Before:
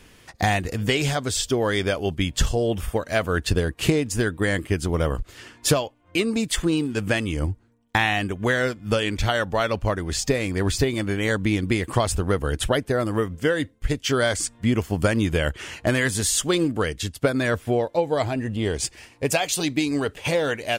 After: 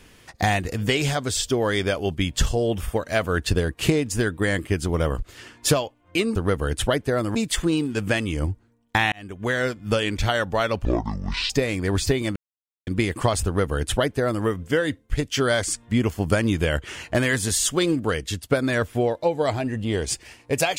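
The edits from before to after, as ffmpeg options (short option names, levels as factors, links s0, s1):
-filter_complex "[0:a]asplit=8[s0][s1][s2][s3][s4][s5][s6][s7];[s0]atrim=end=6.352[s8];[s1]atrim=start=12.168:end=13.172[s9];[s2]atrim=start=6.348:end=8.12,asetpts=PTS-STARTPTS,afade=t=out:st=1.768:d=0.004:c=hsin[s10];[s3]atrim=start=8.12:end=9.854,asetpts=PTS-STARTPTS,afade=t=in:d=0.72:c=qsin[s11];[s4]atrim=start=9.85:end=10.22,asetpts=PTS-STARTPTS,asetrate=25137,aresample=44100,atrim=end_sample=28626,asetpts=PTS-STARTPTS[s12];[s5]atrim=start=10.216:end=11.08,asetpts=PTS-STARTPTS,afade=t=out:st=0.86:d=0.004:c=hsin[s13];[s6]atrim=start=11.08:end=11.59,asetpts=PTS-STARTPTS,volume=0[s14];[s7]atrim=start=11.59,asetpts=PTS-STARTPTS,afade=t=in:d=0.004:c=hsin[s15];[s8][s9]acrossfade=d=0.004:c1=hsin:c2=hsin[s16];[s10][s11]concat=n=2:v=0:a=1[s17];[s16][s17]acrossfade=d=0.004:c1=hsin:c2=hsin[s18];[s18][s12]acrossfade=d=0.004:c1=hsin:c2=hsin[s19];[s13][s14][s15]concat=n=3:v=0:a=1[s20];[s19][s20]acrossfade=d=0.004:c1=hsin:c2=hsin"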